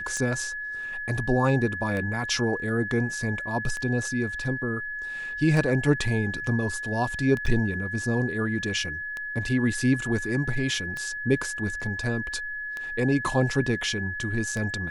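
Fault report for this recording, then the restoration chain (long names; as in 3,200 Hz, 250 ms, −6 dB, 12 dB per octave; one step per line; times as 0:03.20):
scratch tick 33 1/3 rpm −19 dBFS
whistle 1,700 Hz −31 dBFS
0:07.46–0:07.47: drop-out 6.1 ms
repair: click removal
notch filter 1,700 Hz, Q 30
repair the gap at 0:07.46, 6.1 ms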